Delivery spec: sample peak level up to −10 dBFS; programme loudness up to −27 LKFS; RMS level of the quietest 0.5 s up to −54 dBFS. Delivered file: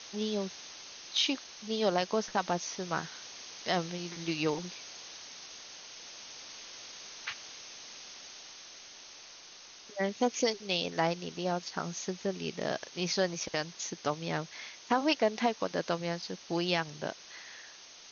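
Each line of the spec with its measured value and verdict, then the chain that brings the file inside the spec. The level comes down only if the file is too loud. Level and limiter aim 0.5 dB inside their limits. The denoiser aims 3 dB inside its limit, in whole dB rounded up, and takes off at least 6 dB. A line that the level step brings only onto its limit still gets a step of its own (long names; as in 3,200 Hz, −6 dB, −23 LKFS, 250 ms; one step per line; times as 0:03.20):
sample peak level −14.0 dBFS: in spec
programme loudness −34.0 LKFS: in spec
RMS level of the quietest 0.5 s −52 dBFS: out of spec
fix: broadband denoise 6 dB, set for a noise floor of −52 dBFS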